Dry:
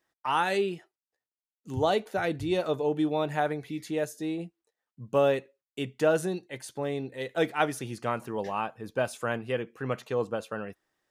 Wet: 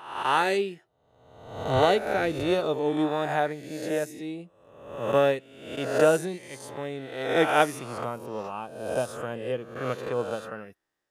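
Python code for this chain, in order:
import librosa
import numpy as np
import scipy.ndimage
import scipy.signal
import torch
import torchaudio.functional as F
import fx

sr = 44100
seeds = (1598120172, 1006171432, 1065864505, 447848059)

y = fx.spec_swells(x, sr, rise_s=1.14)
y = fx.peak_eq(y, sr, hz=1900.0, db=-8.5, octaves=1.3, at=(8.04, 9.76))
y = fx.upward_expand(y, sr, threshold_db=-38.0, expansion=1.5)
y = y * 10.0 ** (2.5 / 20.0)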